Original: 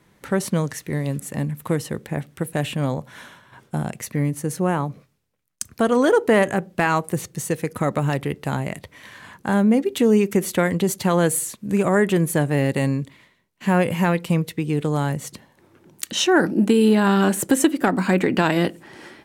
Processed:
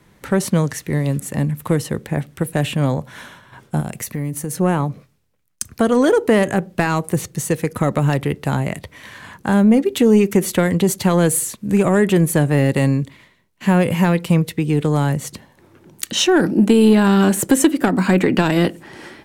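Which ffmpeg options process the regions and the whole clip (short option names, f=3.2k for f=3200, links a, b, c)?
-filter_complex "[0:a]asettb=1/sr,asplit=3[a][b][c];[a]atrim=end=3.804[d];[b]atrim=start=3.8:end=4.55,asetpts=PTS-STARTPTS,afade=t=in:d=0.004:c=qsin,afade=t=out:st=0.746:d=0.004:c=qsin,highshelf=f=11k:g=11.5,acompressor=threshold=-27dB:ratio=3:attack=3.2:release=140:knee=1:detection=peak[e];[c]atrim=start=4.546[f];[d][e]acrossfade=d=0.004:c1=hsin:c2=qsin[g];[g][f]acrossfade=d=0.004:c1=qsin:c2=hsin,acontrast=30,lowshelf=f=83:g=6.5,acrossover=split=460|3000[h][i][j];[i]acompressor=threshold=-17dB:ratio=6[k];[h][k][j]amix=inputs=3:normalize=0,volume=-1dB"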